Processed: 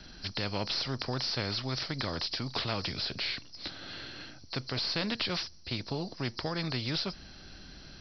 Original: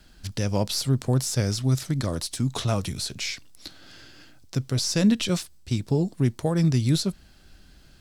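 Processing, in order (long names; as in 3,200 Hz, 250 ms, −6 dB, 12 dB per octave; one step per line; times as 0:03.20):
hearing-aid frequency compression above 4,000 Hz 4 to 1
every bin compressed towards the loudest bin 2 to 1
level −1.5 dB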